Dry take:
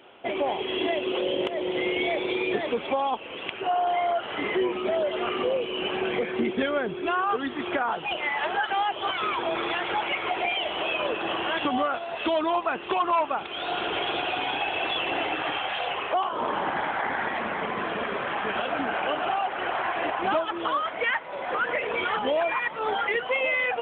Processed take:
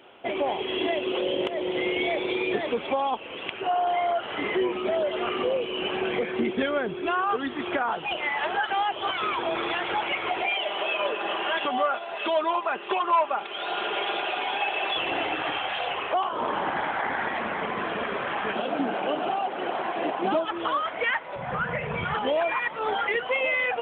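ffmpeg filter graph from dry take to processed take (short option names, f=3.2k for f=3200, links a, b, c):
-filter_complex "[0:a]asettb=1/sr,asplit=3[a][b][c];[a]atrim=end=10.434[d];[b]atrim=start=10.43:end=14.97,asetpts=PTS-STARTPTS,afade=t=in:d=0.004:c=qsin,afade=t=out:st=4.536:d=0.004:c=qsin,bass=f=250:g=-13,treble=f=4k:g=-4,aecho=1:1:5:0.43,atrim=end_sample=200214[e];[c]atrim=start=14.966[f];[d][e]acrossfade=d=0.004:c1=hsin:c2=qsin[g];[g][f]acrossfade=d=0.004:c1=qsin:c2=hsin,asettb=1/sr,asplit=3[h][i][j];[h]atrim=end=18.534[k];[i]atrim=start=18.53:end=20.45,asetpts=PTS-STARTPTS,afade=t=in:d=0.004:c=qsin,afade=t=out:st=1.916:d=0.004:c=qsin,highpass=f=160:w=0.5412,highpass=f=160:w=1.3066,equalizer=f=1.7k:w=0.48:g=-12.5,acontrast=67[l];[j]atrim=start=20.446[m];[k][l]acrossfade=d=0.004:c1=hsin:c2=qsin[n];[n][m]acrossfade=d=0.004:c1=qsin:c2=hsin,asettb=1/sr,asplit=3[o][p][q];[o]atrim=end=21.364[r];[p]atrim=start=21.36:end=22.15,asetpts=PTS-STARTPTS,afade=t=in:d=0.004:c=qsin,afade=t=out:st=0.786:d=0.004:c=qsin,lowpass=f=1.9k:p=1,lowshelf=f=220:t=q:w=3:g=12.5,asplit=2[s][t];[t]adelay=40,volume=-13dB[u];[s][u]amix=inputs=2:normalize=0,atrim=end_sample=34839[v];[q]atrim=start=22.146[w];[r][v]acrossfade=d=0.004:c1=hsin:c2=qsin[x];[x][w]acrossfade=d=0.004:c1=qsin:c2=hsin"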